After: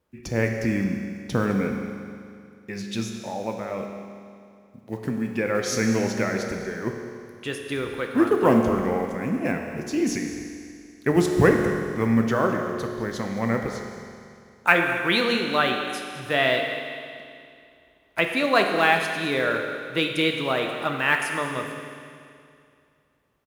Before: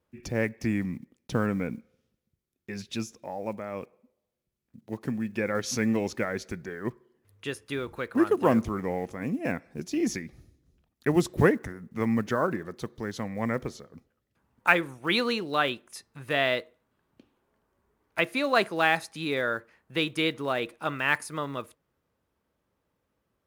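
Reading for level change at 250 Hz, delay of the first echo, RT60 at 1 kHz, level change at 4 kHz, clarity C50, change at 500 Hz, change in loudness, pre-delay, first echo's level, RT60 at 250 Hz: +4.5 dB, 210 ms, 2.4 s, +5.0 dB, 4.0 dB, +5.0 dB, +4.5 dB, 9 ms, −15.0 dB, 2.4 s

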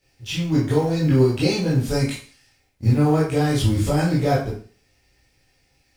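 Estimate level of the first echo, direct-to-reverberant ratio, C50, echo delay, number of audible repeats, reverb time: no echo audible, −8.5 dB, 4.5 dB, no echo audible, no echo audible, 0.40 s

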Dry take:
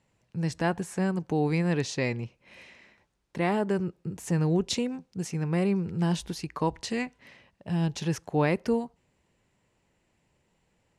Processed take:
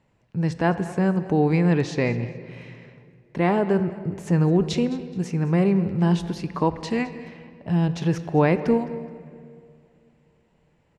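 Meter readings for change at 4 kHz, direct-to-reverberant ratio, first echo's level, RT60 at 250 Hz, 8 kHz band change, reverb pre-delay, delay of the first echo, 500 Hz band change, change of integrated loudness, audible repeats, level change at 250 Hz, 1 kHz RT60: 0.0 dB, 11.0 dB, −18.0 dB, 2.6 s, −4.0 dB, 3 ms, 212 ms, +6.0 dB, +6.0 dB, 2, +6.5 dB, 2.1 s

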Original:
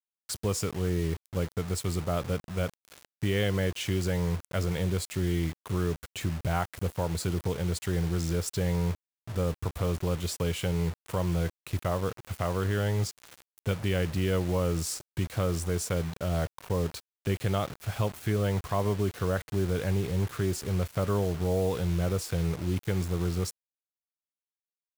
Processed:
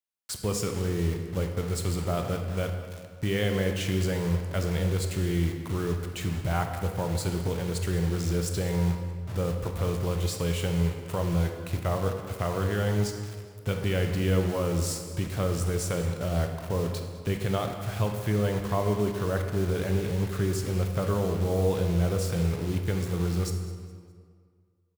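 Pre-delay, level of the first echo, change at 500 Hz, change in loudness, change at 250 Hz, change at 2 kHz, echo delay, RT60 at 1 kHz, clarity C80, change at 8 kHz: 19 ms, −18.5 dB, +1.5 dB, +1.5 dB, +2.0 dB, +1.5 dB, 207 ms, 1.9 s, 7.0 dB, +1.0 dB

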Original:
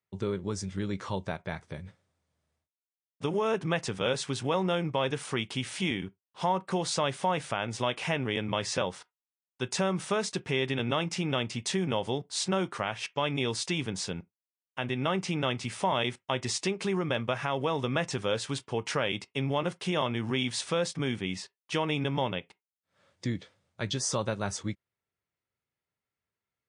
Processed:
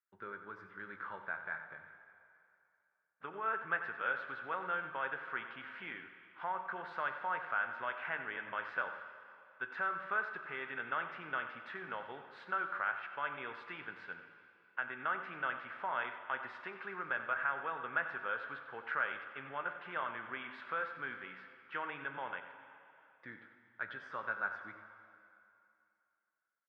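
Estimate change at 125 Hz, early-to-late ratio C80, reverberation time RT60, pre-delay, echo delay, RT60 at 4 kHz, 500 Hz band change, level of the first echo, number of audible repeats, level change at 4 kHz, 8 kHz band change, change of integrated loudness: −27.0 dB, 8.0 dB, 2.6 s, 3 ms, 92 ms, 2.4 s, −16.0 dB, −12.0 dB, 1, −21.5 dB, below −40 dB, −8.5 dB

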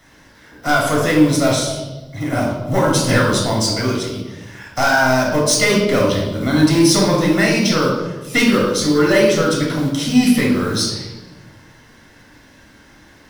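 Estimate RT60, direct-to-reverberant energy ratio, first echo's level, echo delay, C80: 1.2 s, −3.0 dB, no echo audible, no echo audible, 5.5 dB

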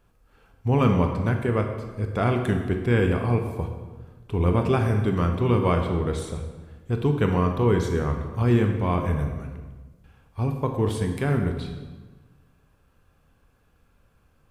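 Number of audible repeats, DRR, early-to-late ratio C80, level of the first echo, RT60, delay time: no echo audible, 4.0 dB, 7.5 dB, no echo audible, 1.3 s, no echo audible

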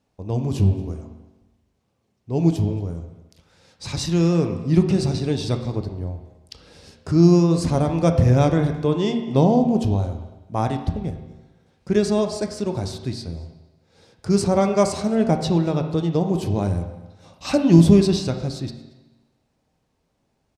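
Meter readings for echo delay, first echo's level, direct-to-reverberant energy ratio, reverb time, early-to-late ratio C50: 229 ms, −23.0 dB, 5.0 dB, 1.1 s, 8.0 dB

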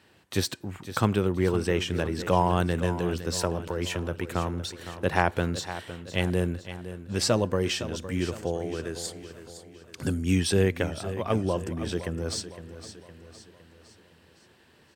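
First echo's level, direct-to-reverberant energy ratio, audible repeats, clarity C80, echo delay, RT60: −12.5 dB, no reverb audible, 4, no reverb audible, 511 ms, no reverb audible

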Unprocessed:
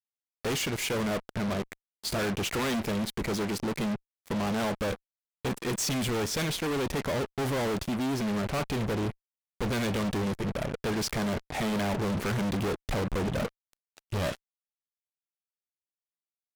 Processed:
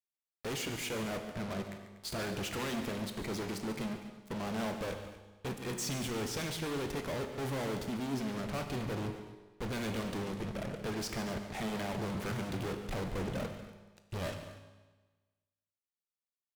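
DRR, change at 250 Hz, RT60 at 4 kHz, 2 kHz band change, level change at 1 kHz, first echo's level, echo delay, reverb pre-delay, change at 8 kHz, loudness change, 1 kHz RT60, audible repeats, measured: 5.5 dB, −7.0 dB, 1.2 s, −7.0 dB, −7.0 dB, −13.0 dB, 143 ms, 19 ms, −7.0 dB, −7.0 dB, 1.3 s, 2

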